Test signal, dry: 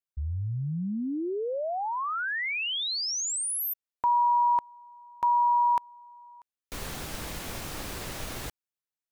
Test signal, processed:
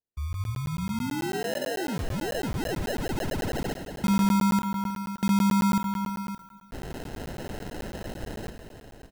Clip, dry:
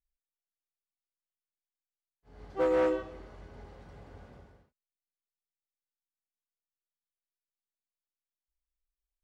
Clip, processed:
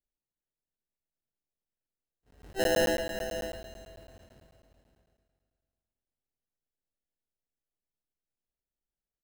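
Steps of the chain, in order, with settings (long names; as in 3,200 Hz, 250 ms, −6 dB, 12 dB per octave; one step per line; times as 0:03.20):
noise gate with hold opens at −38 dBFS, closes at −49 dBFS, hold 71 ms, range −7 dB
decimation without filtering 38×
multi-tap delay 314/569 ms −15/−11.5 dB
four-comb reverb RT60 2.3 s, combs from 29 ms, DRR 8 dB
regular buffer underruns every 0.11 s, samples 512, zero, from 0:00.33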